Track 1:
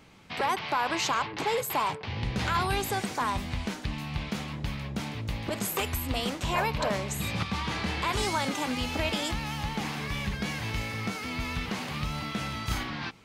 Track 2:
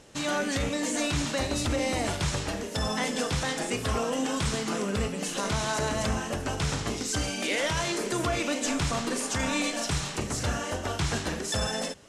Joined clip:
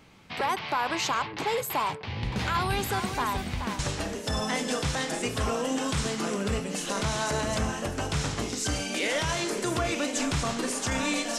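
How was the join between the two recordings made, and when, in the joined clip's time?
track 1
1.89–3.79 s: delay 428 ms -8 dB
3.79 s: go over to track 2 from 2.27 s

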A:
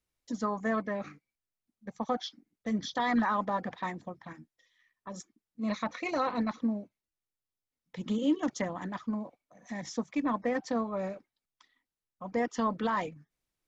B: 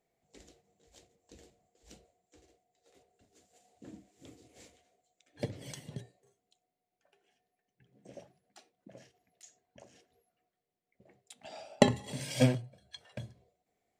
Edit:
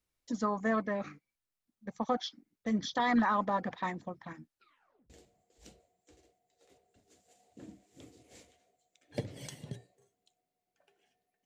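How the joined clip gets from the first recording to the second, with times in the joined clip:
A
4.45 s: tape stop 0.65 s
5.10 s: go over to B from 1.35 s

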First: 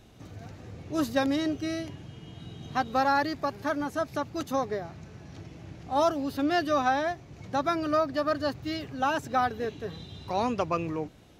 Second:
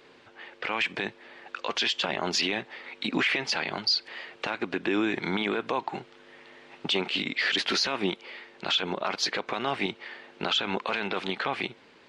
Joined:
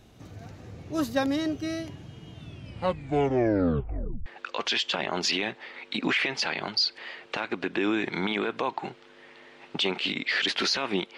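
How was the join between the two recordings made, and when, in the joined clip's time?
first
2.30 s: tape stop 1.96 s
4.26 s: go over to second from 1.36 s

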